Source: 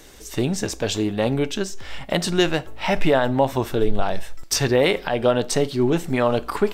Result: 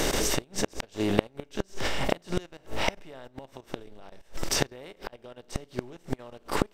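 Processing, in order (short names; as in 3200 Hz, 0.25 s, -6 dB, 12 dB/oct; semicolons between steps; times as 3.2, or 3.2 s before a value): per-bin compression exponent 0.6; level quantiser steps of 16 dB; flipped gate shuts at -18 dBFS, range -34 dB; gain +6.5 dB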